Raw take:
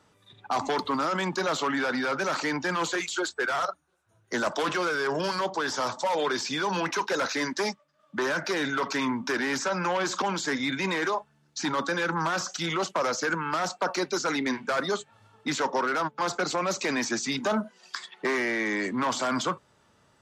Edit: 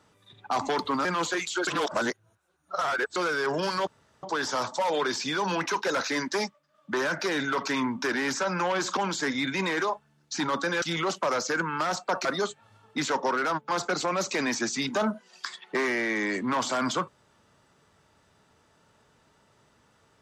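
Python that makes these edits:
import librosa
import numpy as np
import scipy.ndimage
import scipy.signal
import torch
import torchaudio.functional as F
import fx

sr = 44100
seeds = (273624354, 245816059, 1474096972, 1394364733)

y = fx.edit(x, sr, fx.cut(start_s=1.05, length_s=1.61),
    fx.reverse_span(start_s=3.28, length_s=1.49),
    fx.insert_room_tone(at_s=5.48, length_s=0.36),
    fx.cut(start_s=12.07, length_s=0.48),
    fx.cut(start_s=13.98, length_s=0.77), tone=tone)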